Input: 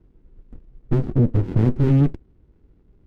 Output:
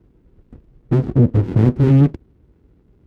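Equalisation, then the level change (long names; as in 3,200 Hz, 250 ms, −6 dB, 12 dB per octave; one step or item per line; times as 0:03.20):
high-pass filter 54 Hz
+4.5 dB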